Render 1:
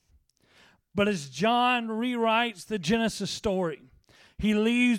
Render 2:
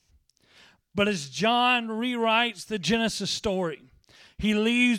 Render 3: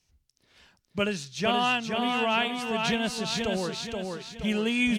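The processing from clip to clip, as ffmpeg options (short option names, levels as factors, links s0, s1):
-af "equalizer=f=4100:t=o:w=2:g=5.5"
-af "aecho=1:1:476|952|1428|1904|2380:0.631|0.271|0.117|0.0502|0.0216,volume=0.668"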